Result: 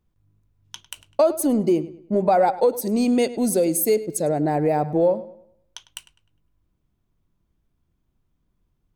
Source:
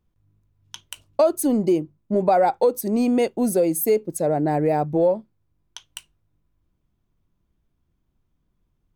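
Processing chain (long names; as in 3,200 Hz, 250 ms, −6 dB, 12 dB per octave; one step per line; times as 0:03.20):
0:02.81–0:04.47: graphic EQ with 10 bands 1,000 Hz −4 dB, 4,000 Hz +5 dB, 8,000 Hz +5 dB
feedback echo with a low-pass in the loop 102 ms, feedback 37%, low-pass 4,900 Hz, level −16 dB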